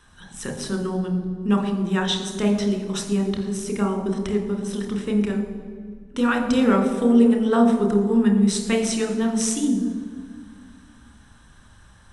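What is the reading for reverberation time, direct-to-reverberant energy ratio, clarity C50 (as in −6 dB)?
1.9 s, 3.5 dB, 6.0 dB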